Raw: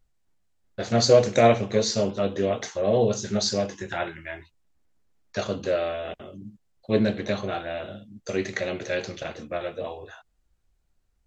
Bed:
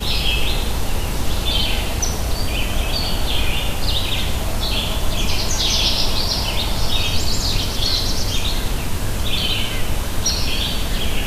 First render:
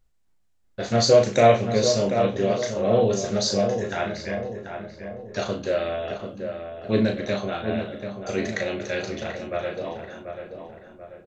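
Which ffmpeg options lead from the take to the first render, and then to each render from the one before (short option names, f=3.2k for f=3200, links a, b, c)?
-filter_complex "[0:a]asplit=2[a][b];[b]adelay=36,volume=-6dB[c];[a][c]amix=inputs=2:normalize=0,asplit=2[d][e];[e]adelay=737,lowpass=f=1.8k:p=1,volume=-7dB,asplit=2[f][g];[g]adelay=737,lowpass=f=1.8k:p=1,volume=0.48,asplit=2[h][i];[i]adelay=737,lowpass=f=1.8k:p=1,volume=0.48,asplit=2[j][k];[k]adelay=737,lowpass=f=1.8k:p=1,volume=0.48,asplit=2[l][m];[m]adelay=737,lowpass=f=1.8k:p=1,volume=0.48,asplit=2[n][o];[o]adelay=737,lowpass=f=1.8k:p=1,volume=0.48[p];[d][f][h][j][l][n][p]amix=inputs=7:normalize=0"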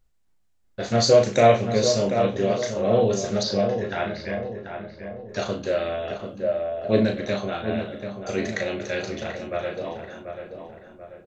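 -filter_complex "[0:a]asettb=1/sr,asplit=3[a][b][c];[a]atrim=end=3.434[d];[b]atrim=start=3.43:end=5.29,asetpts=PTS-STARTPTS,afade=t=in:d=0.004:c=qsin,afade=t=out:st=1.856:d=0.004:c=qsin,lowpass=f=4.7k:w=0.5412,lowpass=f=4.7k:w=1.3066[e];[c]atrim=start=5.286[f];[d][e]acrossfade=d=0.004:c1=hsin:c2=qsin[g];[g][f]acrossfade=d=0.004:c1=qsin:c2=hsin,asettb=1/sr,asplit=3[h][i][j];[h]atrim=end=6.434[k];[i]atrim=start=6.43:end=7.04,asetpts=PTS-STARTPTS,afade=t=in:d=0.004:c=qsin,afade=t=out:st=0.606:d=0.004:c=qsin,equalizer=f=610:t=o:w=0.46:g=9.5[l];[j]atrim=start=7.036[m];[k][l]acrossfade=d=0.004:c1=hsin:c2=qsin[n];[n][m]acrossfade=d=0.004:c1=qsin:c2=hsin"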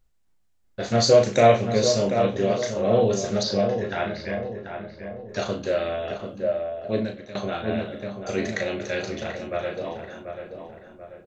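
-filter_complex "[0:a]asplit=2[a][b];[a]atrim=end=7.35,asetpts=PTS-STARTPTS,afade=t=out:st=6.46:d=0.89:silence=0.149624[c];[b]atrim=start=7.35,asetpts=PTS-STARTPTS,afade=t=in:d=0.004:c=hsin:silence=0.149624[d];[c][d]concat=n=2:v=0:a=1"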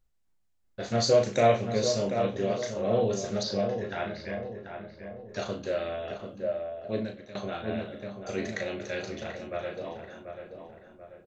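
-af "volume=-6dB"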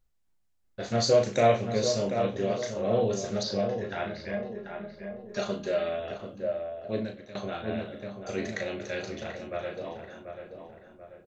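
-filter_complex "[0:a]asettb=1/sr,asplit=3[a][b][c];[a]atrim=end=4.334[d];[b]atrim=start=4.33:end=6,asetpts=PTS-STARTPTS,afade=t=in:d=0.004:c=qsin,afade=t=out:st=1.666:d=0.004:c=qsin,aecho=1:1:4.9:0.65,atrim=end_sample=73647[e];[c]atrim=start=5.996[f];[d][e]acrossfade=d=0.004:c1=hsin:c2=qsin[g];[g][f]acrossfade=d=0.004:c1=qsin:c2=hsin"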